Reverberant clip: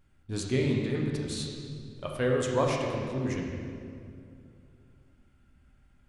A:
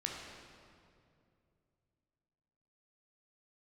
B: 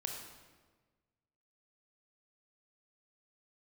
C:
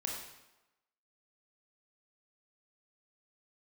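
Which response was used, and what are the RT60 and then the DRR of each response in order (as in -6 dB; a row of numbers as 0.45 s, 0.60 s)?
A; 2.5 s, 1.4 s, 1.0 s; -1.0 dB, 1.5 dB, -1.0 dB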